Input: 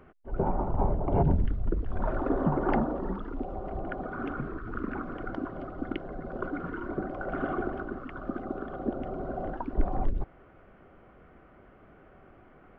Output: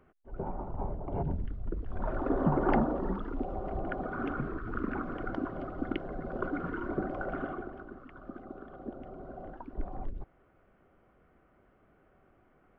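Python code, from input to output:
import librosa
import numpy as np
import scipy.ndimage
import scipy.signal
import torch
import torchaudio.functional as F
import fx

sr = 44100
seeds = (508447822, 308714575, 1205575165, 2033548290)

y = fx.gain(x, sr, db=fx.line((1.46, -9.0), (2.55, 0.0), (7.2, 0.0), (7.67, -10.0)))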